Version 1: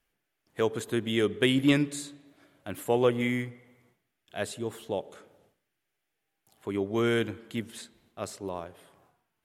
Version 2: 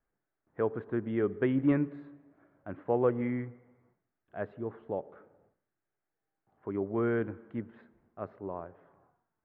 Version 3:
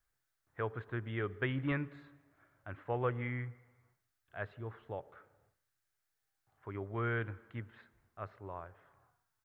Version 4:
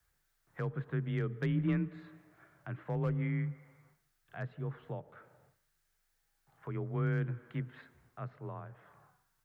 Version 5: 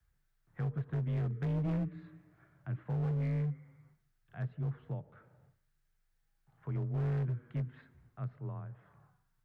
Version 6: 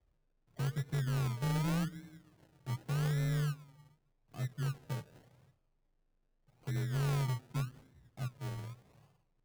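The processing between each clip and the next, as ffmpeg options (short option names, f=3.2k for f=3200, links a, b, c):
-af "lowpass=f=1.6k:w=0.5412,lowpass=f=1.6k:w=1.3066,volume=-3dB"
-af "firequalizer=gain_entry='entry(120,0);entry(180,-14);entry(1300,0);entry(3900,7)':delay=0.05:min_phase=1,volume=1.5dB"
-filter_complex "[0:a]asoftclip=type=hard:threshold=-26.5dB,acrossover=split=280[a][b];[b]acompressor=threshold=-57dB:ratio=2[c];[a][c]amix=inputs=2:normalize=0,afreqshift=25,volume=6.5dB"
-af "bass=f=250:g=11,treble=f=4k:g=-4,asoftclip=type=hard:threshold=-25dB,volume=-5.5dB"
-af "acrusher=samples=33:mix=1:aa=0.000001:lfo=1:lforange=19.8:lforate=0.85"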